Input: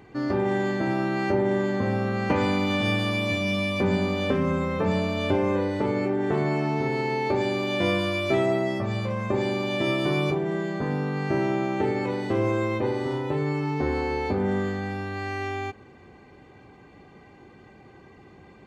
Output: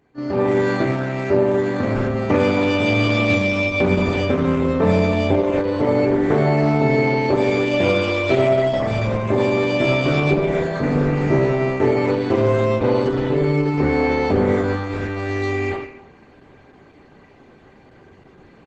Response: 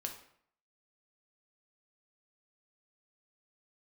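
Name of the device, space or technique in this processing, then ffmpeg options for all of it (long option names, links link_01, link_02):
speakerphone in a meeting room: -filter_complex "[1:a]atrim=start_sample=2205[link_01];[0:a][link_01]afir=irnorm=-1:irlink=0,asplit=2[link_02][link_03];[link_03]adelay=270,highpass=300,lowpass=3400,asoftclip=type=hard:threshold=-20dB,volume=-10dB[link_04];[link_02][link_04]amix=inputs=2:normalize=0,dynaudnorm=framelen=150:gausssize=5:maxgain=13.5dB,agate=range=-7dB:threshold=-27dB:ratio=16:detection=peak,volume=-2.5dB" -ar 48000 -c:a libopus -b:a 12k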